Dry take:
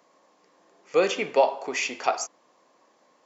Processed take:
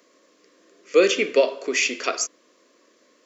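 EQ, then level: fixed phaser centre 340 Hz, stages 4; +7.5 dB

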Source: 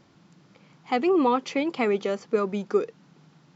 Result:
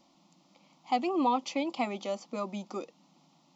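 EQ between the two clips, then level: low shelf 240 Hz -11.5 dB; fixed phaser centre 430 Hz, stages 6; 0.0 dB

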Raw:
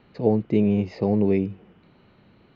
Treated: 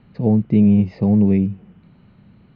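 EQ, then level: air absorption 110 m; resonant low shelf 260 Hz +7.5 dB, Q 1.5; 0.0 dB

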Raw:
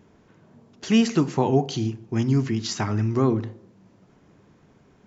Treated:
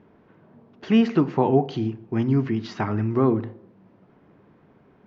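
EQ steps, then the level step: air absorption 250 m; low shelf 130 Hz -9.5 dB; high shelf 4000 Hz -9 dB; +3.5 dB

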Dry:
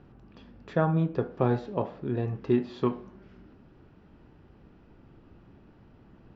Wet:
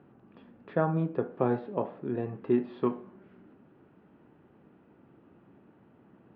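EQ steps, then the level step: BPF 180–3900 Hz; air absorption 310 m; 0.0 dB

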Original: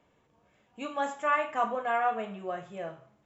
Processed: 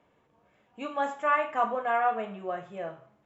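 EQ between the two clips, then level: LPF 1500 Hz 6 dB/oct; tilt +1.5 dB/oct; +3.5 dB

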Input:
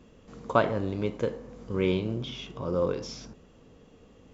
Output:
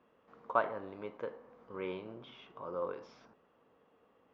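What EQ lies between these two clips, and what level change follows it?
band-pass 1100 Hz, Q 1.1; air absorption 120 m; -3.5 dB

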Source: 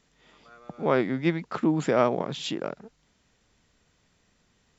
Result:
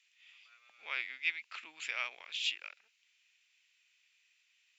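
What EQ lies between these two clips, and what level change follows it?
resonant high-pass 2500 Hz, resonance Q 4.9; -7.0 dB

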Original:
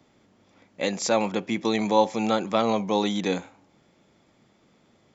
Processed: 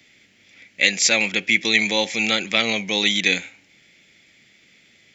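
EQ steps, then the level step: resonant high shelf 1500 Hz +12.5 dB, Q 3; -1.5 dB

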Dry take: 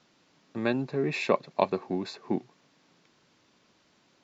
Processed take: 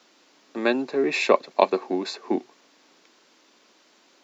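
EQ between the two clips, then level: HPF 260 Hz 24 dB/oct; high shelf 6700 Hz +6 dB; +6.5 dB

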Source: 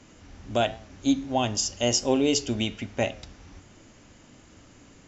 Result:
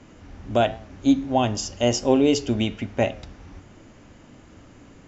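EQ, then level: high shelf 3200 Hz -11 dB; +5.0 dB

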